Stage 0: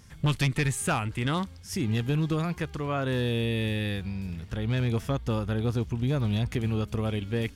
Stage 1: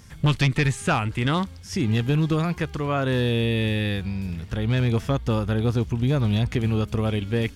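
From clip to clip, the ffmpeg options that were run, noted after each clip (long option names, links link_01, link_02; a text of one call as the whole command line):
ffmpeg -i in.wav -filter_complex "[0:a]acrossover=split=7000[link_01][link_02];[link_02]acompressor=threshold=-55dB:ratio=4:attack=1:release=60[link_03];[link_01][link_03]amix=inputs=2:normalize=0,volume=5dB" out.wav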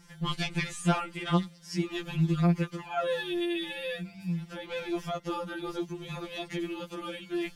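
ffmpeg -i in.wav -af "afftfilt=real='re*2.83*eq(mod(b,8),0)':imag='im*2.83*eq(mod(b,8),0)':win_size=2048:overlap=0.75,volume=-3.5dB" out.wav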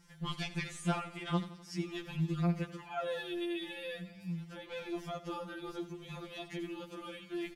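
ffmpeg -i in.wav -af "aecho=1:1:84|168|252|336|420|504:0.168|0.099|0.0584|0.0345|0.0203|0.012,volume=-7dB" out.wav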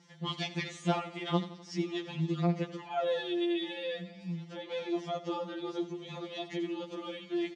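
ffmpeg -i in.wav -af "highpass=220,equalizer=frequency=1100:width_type=q:width=4:gain=-4,equalizer=frequency=1500:width_type=q:width=4:gain=-10,equalizer=frequency=2500:width_type=q:width=4:gain=-6,equalizer=frequency=4900:width_type=q:width=4:gain=-5,lowpass=frequency=6000:width=0.5412,lowpass=frequency=6000:width=1.3066,volume=7dB" out.wav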